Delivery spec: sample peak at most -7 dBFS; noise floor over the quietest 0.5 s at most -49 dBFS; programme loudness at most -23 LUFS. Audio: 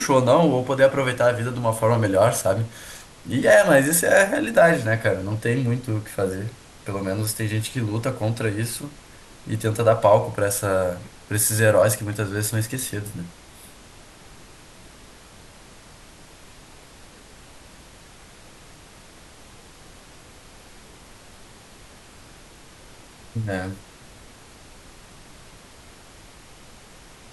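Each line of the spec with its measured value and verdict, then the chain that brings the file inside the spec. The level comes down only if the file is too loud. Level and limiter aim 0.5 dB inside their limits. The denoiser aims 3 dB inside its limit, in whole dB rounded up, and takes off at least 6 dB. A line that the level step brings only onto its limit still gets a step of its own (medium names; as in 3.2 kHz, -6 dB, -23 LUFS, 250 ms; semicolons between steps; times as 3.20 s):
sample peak -4.5 dBFS: fail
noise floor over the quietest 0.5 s -47 dBFS: fail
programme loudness -21.0 LUFS: fail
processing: trim -2.5 dB; peak limiter -7.5 dBFS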